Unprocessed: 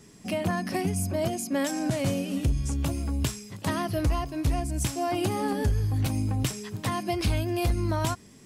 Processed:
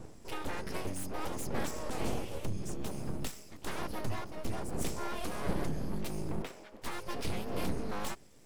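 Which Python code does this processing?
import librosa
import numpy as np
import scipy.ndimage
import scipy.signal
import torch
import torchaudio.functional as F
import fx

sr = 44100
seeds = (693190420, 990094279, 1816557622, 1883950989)

y = fx.dmg_wind(x, sr, seeds[0], corner_hz=210.0, level_db=-32.0)
y = np.abs(y)
y = fx.bass_treble(y, sr, bass_db=-13, treble_db=-14, at=(6.42, 6.82))
y = y * librosa.db_to_amplitude(-7.5)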